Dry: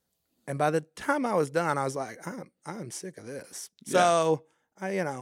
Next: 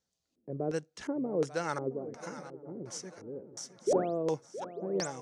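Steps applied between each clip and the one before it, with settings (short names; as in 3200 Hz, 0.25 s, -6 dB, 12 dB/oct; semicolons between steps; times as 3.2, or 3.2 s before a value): painted sound rise, 3.87–4.18, 350–9100 Hz -18 dBFS; swung echo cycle 0.892 s, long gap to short 3:1, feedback 37%, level -14 dB; LFO low-pass square 1.4 Hz 400–6200 Hz; gain -7 dB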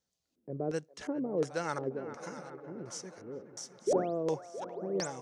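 band-limited delay 0.408 s, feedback 56%, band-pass 1200 Hz, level -12.5 dB; gain -1 dB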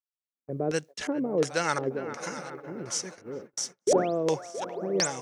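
bell 2500 Hz +6.5 dB 1.7 oct; gate -47 dBFS, range -36 dB; high shelf 4400 Hz +8 dB; gain +5 dB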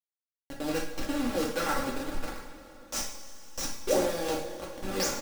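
level-crossing sampler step -24.5 dBFS; comb 3.6 ms, depth 70%; two-slope reverb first 0.53 s, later 3.4 s, from -15 dB, DRR -2.5 dB; gain -7 dB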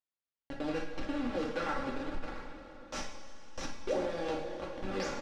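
LPF 3400 Hz 12 dB/oct; compressor 2:1, threshold -34 dBFS, peak gain reduction 7.5 dB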